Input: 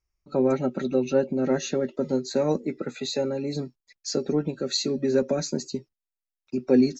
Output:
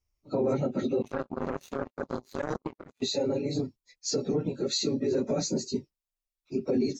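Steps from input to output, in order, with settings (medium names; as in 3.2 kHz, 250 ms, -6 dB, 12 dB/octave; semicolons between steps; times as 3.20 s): phase randomisation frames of 50 ms; peaking EQ 1.6 kHz -8.5 dB 0.48 oct; peak limiter -19 dBFS, peak gain reduction 11 dB; 1.02–3.02 s: power-law waveshaper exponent 3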